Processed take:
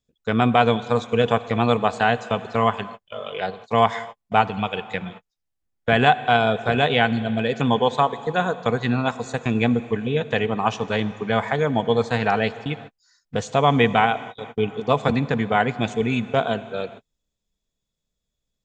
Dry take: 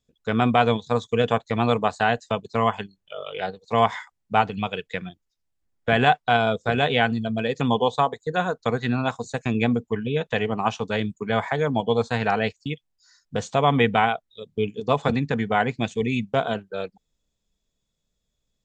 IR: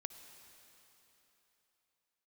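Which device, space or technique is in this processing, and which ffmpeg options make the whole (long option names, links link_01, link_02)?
keyed gated reverb: -filter_complex "[0:a]asplit=3[link_01][link_02][link_03];[1:a]atrim=start_sample=2205[link_04];[link_02][link_04]afir=irnorm=-1:irlink=0[link_05];[link_03]apad=whole_len=822108[link_06];[link_05][link_06]sidechaingate=range=-58dB:threshold=-44dB:ratio=16:detection=peak,volume=2.5dB[link_07];[link_01][link_07]amix=inputs=2:normalize=0,volume=-3.5dB"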